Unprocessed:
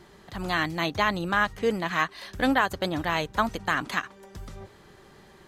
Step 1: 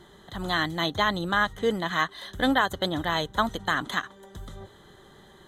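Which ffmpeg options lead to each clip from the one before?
ffmpeg -i in.wav -af "superequalizer=12b=0.316:13b=1.78:14b=0.398" out.wav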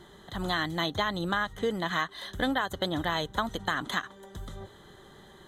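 ffmpeg -i in.wav -af "acompressor=threshold=-25dB:ratio=4" out.wav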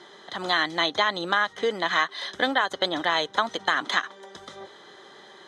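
ffmpeg -i in.wav -af "highpass=380,equalizer=frequency=2300:width_type=q:width=4:gain=5,equalizer=frequency=5200:width_type=q:width=4:gain=8,equalizer=frequency=7600:width_type=q:width=4:gain=-7,lowpass=frequency=8300:width=0.5412,lowpass=frequency=8300:width=1.3066,volume=6dB" out.wav

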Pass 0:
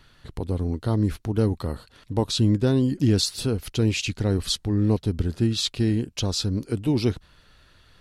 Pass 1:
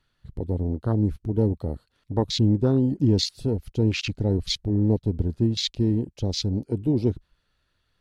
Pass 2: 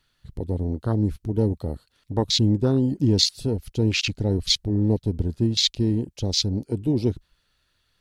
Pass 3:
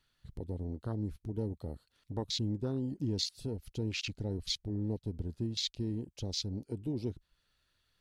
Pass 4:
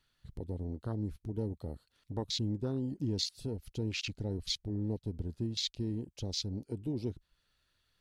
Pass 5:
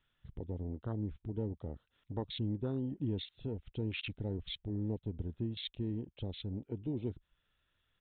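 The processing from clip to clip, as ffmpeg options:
ffmpeg -i in.wav -af "afwtdn=0.0355" out.wav
ffmpeg -i in.wav -af "highshelf=frequency=2400:gain=8.5" out.wav
ffmpeg -i in.wav -af "acompressor=threshold=-37dB:ratio=1.5,volume=-7dB" out.wav
ffmpeg -i in.wav -af anull out.wav
ffmpeg -i in.wav -af "aresample=8000,aresample=44100,volume=-1.5dB" out.wav

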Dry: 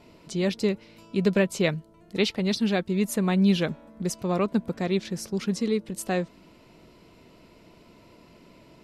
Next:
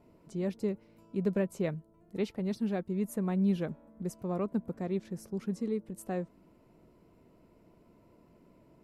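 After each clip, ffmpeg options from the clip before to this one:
ffmpeg -i in.wav -af "equalizer=frequency=3900:width_type=o:width=2.2:gain=-15,volume=-7dB" out.wav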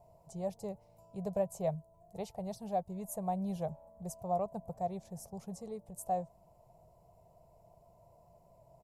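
ffmpeg -i in.wav -af "firequalizer=gain_entry='entry(140,0);entry(260,-23);entry(690,10);entry(1400,-17);entry(6700,2)':delay=0.05:min_phase=1,volume=1dB" out.wav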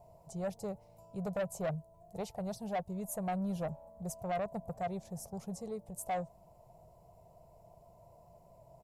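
ffmpeg -i in.wav -af "asoftclip=type=tanh:threshold=-33dB,volume=3dB" out.wav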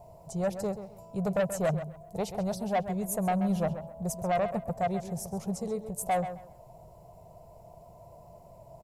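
ffmpeg -i in.wav -filter_complex "[0:a]asplit=2[link_01][link_02];[link_02]adelay=132,lowpass=frequency=4100:poles=1,volume=-10.5dB,asplit=2[link_03][link_04];[link_04]adelay=132,lowpass=frequency=4100:poles=1,volume=0.24,asplit=2[link_05][link_06];[link_06]adelay=132,lowpass=frequency=4100:poles=1,volume=0.24[link_07];[link_01][link_03][link_05][link_07]amix=inputs=4:normalize=0,volume=7.5dB" out.wav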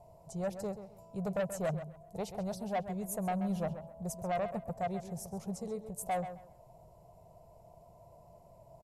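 ffmpeg -i in.wav -af "aresample=32000,aresample=44100,volume=-6dB" out.wav

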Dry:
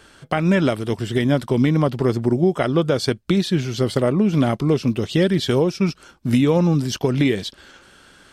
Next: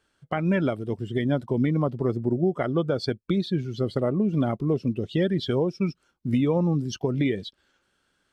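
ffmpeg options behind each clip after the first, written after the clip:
ffmpeg -i in.wav -af "afftdn=noise_reduction=16:noise_floor=-27,volume=-6dB" out.wav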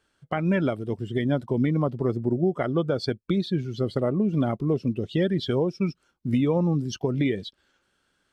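ffmpeg -i in.wav -af anull out.wav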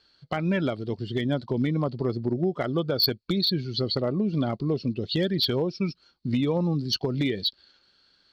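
ffmpeg -i in.wav -filter_complex "[0:a]asplit=2[link_01][link_02];[link_02]acompressor=threshold=-30dB:ratio=8,volume=-2.5dB[link_03];[link_01][link_03]amix=inputs=2:normalize=0,lowpass=frequency=4400:width_type=q:width=12,volume=13dB,asoftclip=hard,volume=-13dB,volume=-4dB" out.wav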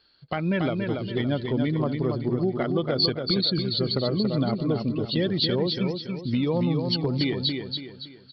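ffmpeg -i in.wav -filter_complex "[0:a]asplit=2[link_01][link_02];[link_02]aecho=0:1:282|564|846|1128|1410:0.562|0.214|0.0812|0.0309|0.0117[link_03];[link_01][link_03]amix=inputs=2:normalize=0,aresample=11025,aresample=44100" out.wav

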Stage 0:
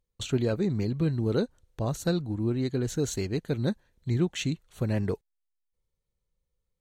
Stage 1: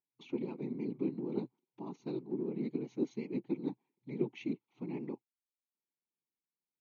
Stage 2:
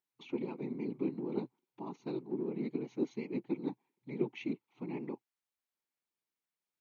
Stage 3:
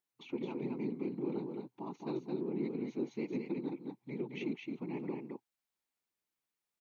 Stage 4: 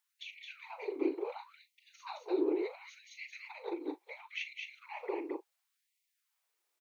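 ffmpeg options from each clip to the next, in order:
ffmpeg -i in.wav -filter_complex "[0:a]asplit=3[link_01][link_02][link_03];[link_01]bandpass=frequency=300:width_type=q:width=8,volume=0dB[link_04];[link_02]bandpass=frequency=870:width_type=q:width=8,volume=-6dB[link_05];[link_03]bandpass=frequency=2240:width_type=q:width=8,volume=-9dB[link_06];[link_04][link_05][link_06]amix=inputs=3:normalize=0,afftfilt=real='hypot(re,im)*cos(2*PI*random(0))':imag='hypot(re,im)*sin(2*PI*random(1))':win_size=512:overlap=0.75,afftfilt=real='re*between(b*sr/4096,120,6800)':imag='im*between(b*sr/4096,120,6800)':win_size=4096:overlap=0.75,volume=8dB" out.wav
ffmpeg -i in.wav -af "equalizer=frequency=1400:width_type=o:width=2.9:gain=6,volume=-1.5dB" out.wav
ffmpeg -i in.wav -af "alimiter=level_in=3.5dB:limit=-24dB:level=0:latency=1:release=163,volume=-3.5dB,aecho=1:1:217:0.631" out.wav
ffmpeg -i in.wav -filter_complex "[0:a]asplit=2[link_01][link_02];[link_02]adelay=39,volume=-12dB[link_03];[link_01][link_03]amix=inputs=2:normalize=0,afftfilt=real='re*gte(b*sr/1024,280*pow(1900/280,0.5+0.5*sin(2*PI*0.71*pts/sr)))':imag='im*gte(b*sr/1024,280*pow(1900/280,0.5+0.5*sin(2*PI*0.71*pts/sr)))':win_size=1024:overlap=0.75,volume=7.5dB" out.wav

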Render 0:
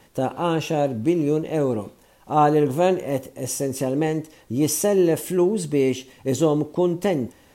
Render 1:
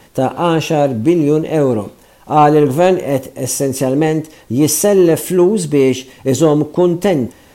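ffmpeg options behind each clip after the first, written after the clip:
ffmpeg -i in.wav -af "acontrast=67,volume=2.5dB" out.wav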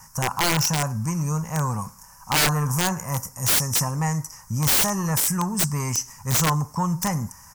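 ffmpeg -i in.wav -af "firequalizer=gain_entry='entry(170,0);entry(320,-27);entry(660,-13);entry(960,7);entry(3600,-24);entry(5300,12);entry(8400,7)':delay=0.05:min_phase=1,aeval=exprs='(mod(3.16*val(0)+1,2)-1)/3.16':channel_layout=same,volume=-3.5dB" out.wav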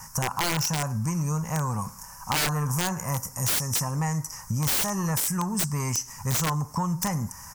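ffmpeg -i in.wav -af "acompressor=threshold=-31dB:ratio=3,volume=4.5dB" out.wav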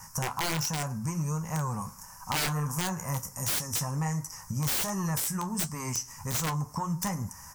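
ffmpeg -i in.wav -af "flanger=delay=9.9:depth=4.8:regen=-52:speed=1.4:shape=triangular" out.wav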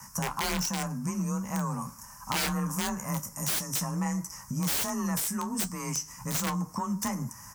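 ffmpeg -i in.wav -af "afreqshift=30" out.wav

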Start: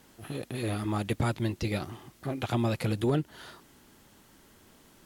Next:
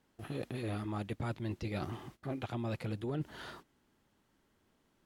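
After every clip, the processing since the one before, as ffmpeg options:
ffmpeg -i in.wav -af "agate=range=-16dB:threshold=-52dB:ratio=16:detection=peak,highshelf=frequency=5300:gain=-10,areverse,acompressor=threshold=-36dB:ratio=6,areverse,volume=1.5dB" out.wav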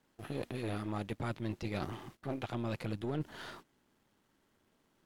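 ffmpeg -i in.wav -af "aeval=exprs='if(lt(val(0),0),0.447*val(0),val(0))':channel_layout=same,lowshelf=frequency=70:gain=-7.5,volume=3dB" out.wav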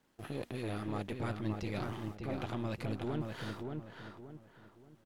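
ffmpeg -i in.wav -filter_complex "[0:a]asplit=2[link_01][link_02];[link_02]alimiter=level_in=7.5dB:limit=-24dB:level=0:latency=1,volume=-7.5dB,volume=-2dB[link_03];[link_01][link_03]amix=inputs=2:normalize=0,asplit=2[link_04][link_05];[link_05]adelay=577,lowpass=frequency=2300:poles=1,volume=-4dB,asplit=2[link_06][link_07];[link_07]adelay=577,lowpass=frequency=2300:poles=1,volume=0.35,asplit=2[link_08][link_09];[link_09]adelay=577,lowpass=frequency=2300:poles=1,volume=0.35,asplit=2[link_10][link_11];[link_11]adelay=577,lowpass=frequency=2300:poles=1,volume=0.35[link_12];[link_04][link_06][link_08][link_10][link_12]amix=inputs=5:normalize=0,volume=-4.5dB" out.wav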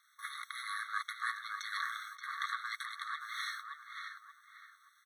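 ffmpeg -i in.wav -af "afreqshift=-40,aeval=exprs='val(0)*sin(2*PI*450*n/s)':channel_layout=same,afftfilt=real='re*eq(mod(floor(b*sr/1024/1100),2),1)':imag='im*eq(mod(floor(b*sr/1024/1100),2),1)':win_size=1024:overlap=0.75,volume=13.5dB" out.wav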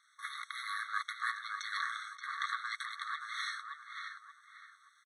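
ffmpeg -i in.wav -af "aresample=22050,aresample=44100,volume=1dB" out.wav

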